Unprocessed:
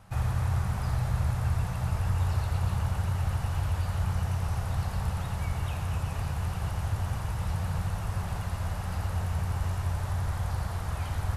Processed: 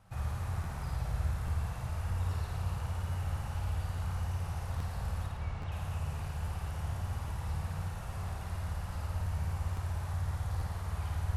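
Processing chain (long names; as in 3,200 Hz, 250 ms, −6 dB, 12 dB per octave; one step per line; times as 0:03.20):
0:05.26–0:05.72: high-frequency loss of the air 110 metres
flutter between parallel walls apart 9.3 metres, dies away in 0.83 s
regular buffer underruns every 0.83 s, samples 512, repeat, from 0:00.63
level −8.5 dB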